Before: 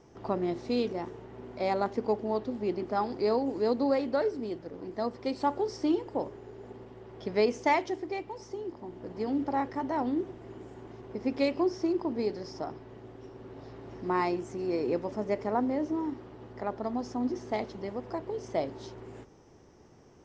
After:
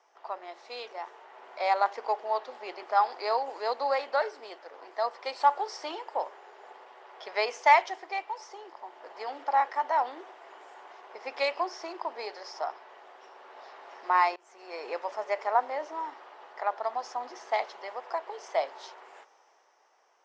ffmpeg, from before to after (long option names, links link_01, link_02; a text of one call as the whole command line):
ffmpeg -i in.wav -filter_complex "[0:a]asplit=2[link_01][link_02];[link_01]atrim=end=14.36,asetpts=PTS-STARTPTS,afade=type=out:start_time=14.356:duration=0.004:curve=hsin:silence=0.0794328[link_03];[link_02]atrim=start=14.36,asetpts=PTS-STARTPTS,afade=type=in:duration=0.57:silence=0.0794328[link_04];[link_03][link_04]concat=n=2:v=0:a=1,highpass=frequency=710:width=0.5412,highpass=frequency=710:width=1.3066,aemphasis=mode=reproduction:type=cd,dynaudnorm=framelen=110:gausssize=21:maxgain=8dB" out.wav